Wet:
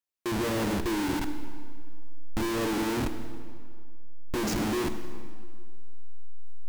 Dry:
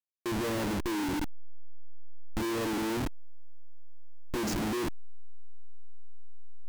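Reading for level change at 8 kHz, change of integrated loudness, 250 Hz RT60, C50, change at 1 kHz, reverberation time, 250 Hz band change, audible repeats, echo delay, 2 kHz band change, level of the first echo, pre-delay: +3.0 dB, +2.5 dB, 2.0 s, 9.5 dB, +3.0 dB, 1.9 s, +3.0 dB, no echo audible, no echo audible, +3.0 dB, no echo audible, 32 ms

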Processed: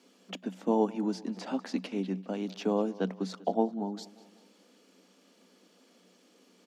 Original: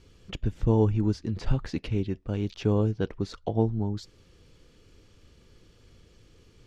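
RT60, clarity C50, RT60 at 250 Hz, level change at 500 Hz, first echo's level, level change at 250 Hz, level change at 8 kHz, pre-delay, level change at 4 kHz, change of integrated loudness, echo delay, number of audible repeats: no reverb audible, no reverb audible, no reverb audible, −1.5 dB, −20.0 dB, −2.5 dB, can't be measured, no reverb audible, −1.5 dB, −4.0 dB, 195 ms, 3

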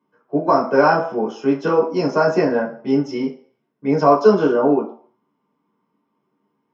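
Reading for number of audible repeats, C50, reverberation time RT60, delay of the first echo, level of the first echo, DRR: no echo audible, 10.0 dB, 0.50 s, no echo audible, no echo audible, −3.5 dB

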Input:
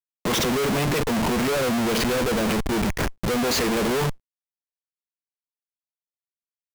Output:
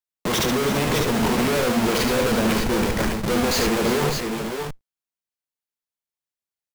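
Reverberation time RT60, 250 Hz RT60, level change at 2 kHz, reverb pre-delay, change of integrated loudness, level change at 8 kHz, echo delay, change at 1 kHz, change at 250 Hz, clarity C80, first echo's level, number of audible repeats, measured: no reverb audible, no reverb audible, +2.0 dB, no reverb audible, +1.5 dB, +2.0 dB, 73 ms, +2.0 dB, +2.0 dB, no reverb audible, −5.5 dB, 3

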